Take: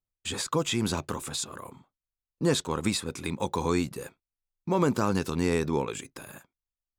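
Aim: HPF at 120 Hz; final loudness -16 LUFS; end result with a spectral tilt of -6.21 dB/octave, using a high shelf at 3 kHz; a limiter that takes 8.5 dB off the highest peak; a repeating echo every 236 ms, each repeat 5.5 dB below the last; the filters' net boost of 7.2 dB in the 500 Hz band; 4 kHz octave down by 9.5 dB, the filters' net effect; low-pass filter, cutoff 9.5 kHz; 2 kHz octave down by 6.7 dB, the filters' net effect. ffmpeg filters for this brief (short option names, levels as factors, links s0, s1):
-af "highpass=120,lowpass=9500,equalizer=f=500:t=o:g=9,equalizer=f=2000:t=o:g=-5.5,highshelf=f=3000:g=-6.5,equalizer=f=4000:t=o:g=-5,alimiter=limit=0.158:level=0:latency=1,aecho=1:1:236|472|708|944|1180|1416|1652:0.531|0.281|0.149|0.079|0.0419|0.0222|0.0118,volume=3.98"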